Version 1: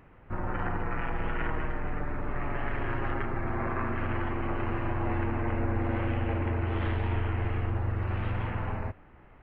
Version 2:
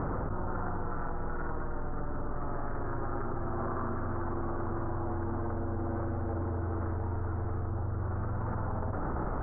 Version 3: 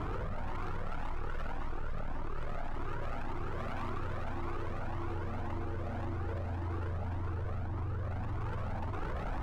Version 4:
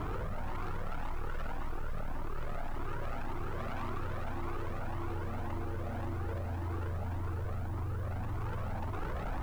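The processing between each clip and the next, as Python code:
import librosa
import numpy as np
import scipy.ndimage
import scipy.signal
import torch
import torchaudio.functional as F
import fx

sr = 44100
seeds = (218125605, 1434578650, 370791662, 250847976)

y1 = scipy.signal.sosfilt(scipy.signal.ellip(4, 1.0, 70, 1400.0, 'lowpass', fs=sr, output='sos'), x)
y1 = fx.env_flatten(y1, sr, amount_pct=100)
y1 = y1 * 10.0 ** (-6.0 / 20.0)
y2 = np.clip(y1, -10.0 ** (-35.0 / 20.0), 10.0 ** (-35.0 / 20.0))
y2 = fx.echo_wet_highpass(y2, sr, ms=251, feedback_pct=83, hz=1400.0, wet_db=-9.5)
y2 = fx.comb_cascade(y2, sr, direction='rising', hz=1.8)
y2 = y2 * 10.0 ** (4.0 / 20.0)
y3 = fx.dmg_noise_colour(y2, sr, seeds[0], colour='white', level_db=-68.0)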